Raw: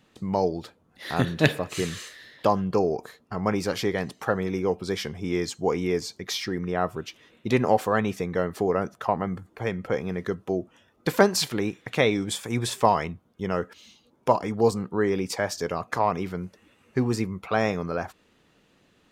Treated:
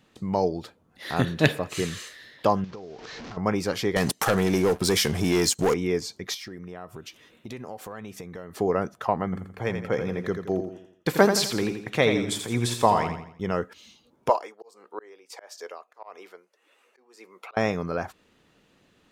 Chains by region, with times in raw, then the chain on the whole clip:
2.64–3.37 delta modulation 32 kbps, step -33.5 dBFS + compressor 10:1, threshold -36 dBFS
3.96–5.74 sample leveller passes 3 + bell 11000 Hz +12 dB 1.7 oct + compressor 3:1, threshold -20 dBFS
6.34–8.55 high shelf 7300 Hz +7.5 dB + compressor 4:1, threshold -37 dBFS
9.24–13.51 expander -54 dBFS + feedback echo 84 ms, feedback 41%, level -7.5 dB
14.29–17.57 HPF 420 Hz 24 dB/oct + auto swell 0.456 s + tremolo 1.6 Hz, depth 80%
whole clip: dry

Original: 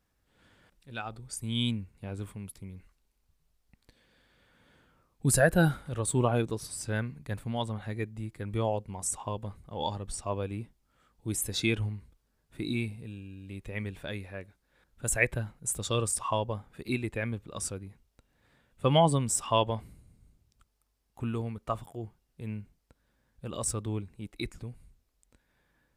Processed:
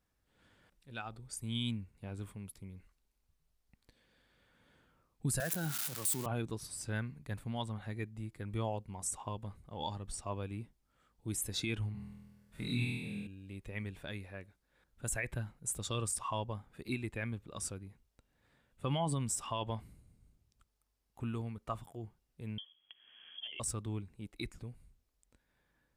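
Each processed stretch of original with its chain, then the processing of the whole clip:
5.4–6.26 switching spikes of -18 dBFS + HPF 130 Hz 24 dB/oct
11.92–13.27 bell 330 Hz -15 dB 0.28 oct + flutter echo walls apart 4.2 m, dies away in 1.3 s
22.58–23.6 inverted band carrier 3300 Hz + three-band squash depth 100%
whole clip: dynamic EQ 500 Hz, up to -5 dB, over -44 dBFS, Q 1.7; limiter -20 dBFS; gain -5 dB

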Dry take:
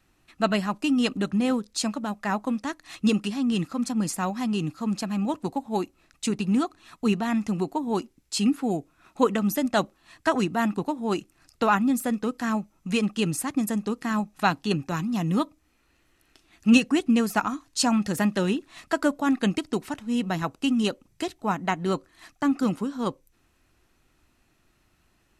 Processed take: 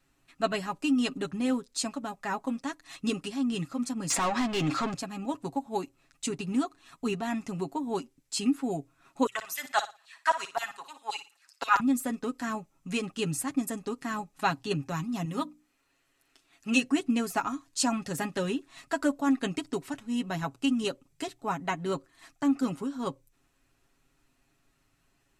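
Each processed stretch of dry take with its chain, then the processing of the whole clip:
4.1–4.94 air absorption 73 m + overdrive pedal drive 23 dB, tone 5700 Hz, clips at -16.5 dBFS + fast leveller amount 70%
9.26–11.8 LFO high-pass saw down 7.6 Hz 740–5100 Hz + flutter echo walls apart 9.9 m, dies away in 0.29 s
15.25–16.85 low shelf 210 Hz -9 dB + notches 60/120/180/240/300 Hz
whole clip: bell 7800 Hz +3.5 dB 0.44 oct; notches 60/120 Hz; comb 7.3 ms, depth 63%; gain -6 dB

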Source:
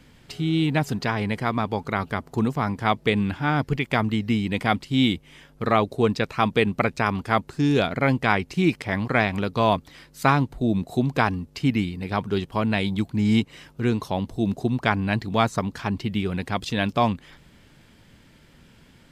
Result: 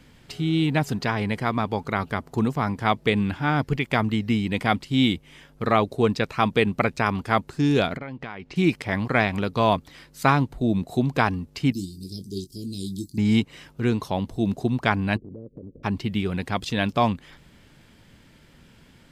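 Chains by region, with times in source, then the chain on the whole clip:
7.97–8.56 LPF 3900 Hz + compressor 16:1, threshold -30 dBFS + bell 77 Hz -5 dB 1 oct
11.72–13.18 Chebyshev band-stop 360–4700 Hz, order 4 + tilt shelf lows -9.5 dB, about 630 Hz + doubler 21 ms -8 dB
15.16–15.83 spectral limiter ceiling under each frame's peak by 12 dB + steep low-pass 550 Hz 72 dB/oct + compressor 5:1, threshold -37 dBFS
whole clip: dry

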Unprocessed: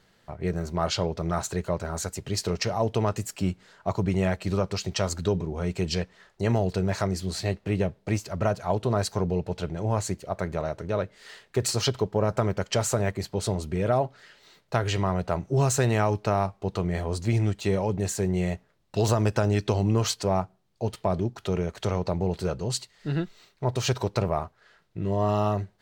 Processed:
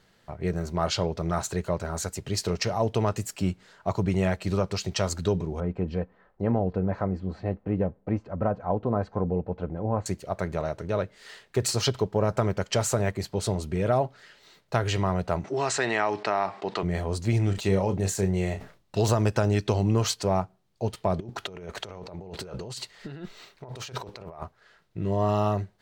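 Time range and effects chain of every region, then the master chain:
5.6–10.06 LPF 1100 Hz + comb 3.9 ms, depth 36%
15.44–16.83 speaker cabinet 370–6900 Hz, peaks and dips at 510 Hz -7 dB, 1900 Hz +6 dB, 6300 Hz -8 dB + fast leveller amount 50%
17.44–18.99 doubler 31 ms -9 dB + sustainer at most 130 dB/s
21.2–24.42 tone controls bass -6 dB, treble -4 dB + negative-ratio compressor -39 dBFS
whole clip: dry

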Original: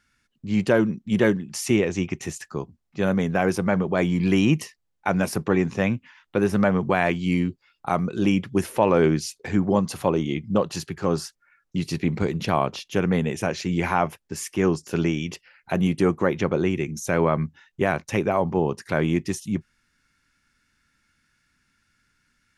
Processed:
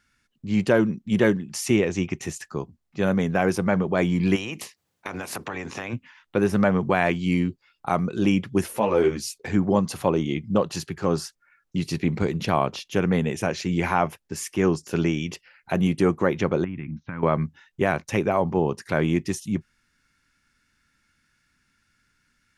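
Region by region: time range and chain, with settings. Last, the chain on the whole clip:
4.35–5.92 spectral limiter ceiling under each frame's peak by 17 dB + HPF 94 Hz + compressor 8:1, threshold -28 dBFS
8.68–9.38 high shelf 9200 Hz +11 dB + ensemble effect
16.64–17.23 band shelf 520 Hz -15.5 dB 1.3 oct + compressor, threshold -27 dBFS + Gaussian blur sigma 3.6 samples
whole clip: dry

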